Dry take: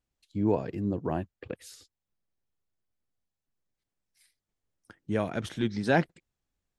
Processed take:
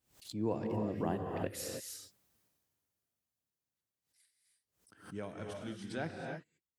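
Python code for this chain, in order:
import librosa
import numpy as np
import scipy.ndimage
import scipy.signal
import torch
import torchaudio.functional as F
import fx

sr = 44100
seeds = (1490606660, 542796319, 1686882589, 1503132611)

y = fx.doppler_pass(x, sr, speed_mps=15, closest_m=1.6, pass_at_s=2.11)
y = scipy.signal.sosfilt(scipy.signal.butter(2, 84.0, 'highpass', fs=sr, output='sos'), y)
y = fx.high_shelf(y, sr, hz=7500.0, db=8.5)
y = fx.rev_gated(y, sr, seeds[0], gate_ms=340, shape='rising', drr_db=1.5)
y = fx.pre_swell(y, sr, db_per_s=130.0)
y = F.gain(torch.from_numpy(y), 15.0).numpy()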